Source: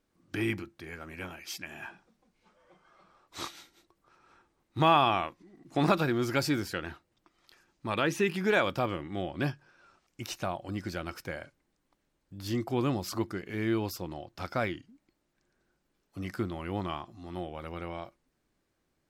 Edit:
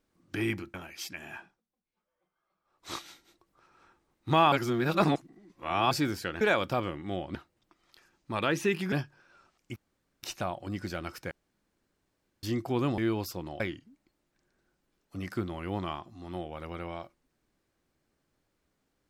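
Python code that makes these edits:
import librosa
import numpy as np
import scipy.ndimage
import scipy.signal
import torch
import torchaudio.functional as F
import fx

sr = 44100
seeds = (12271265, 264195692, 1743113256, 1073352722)

y = fx.edit(x, sr, fx.cut(start_s=0.74, length_s=0.49),
    fx.fade_down_up(start_s=1.81, length_s=1.61, db=-20.0, fade_s=0.29),
    fx.reverse_span(start_s=5.01, length_s=1.39),
    fx.move(start_s=8.47, length_s=0.94, to_s=6.9),
    fx.insert_room_tone(at_s=10.25, length_s=0.47),
    fx.room_tone_fill(start_s=11.33, length_s=1.12),
    fx.cut(start_s=13.0, length_s=0.63),
    fx.cut(start_s=14.25, length_s=0.37), tone=tone)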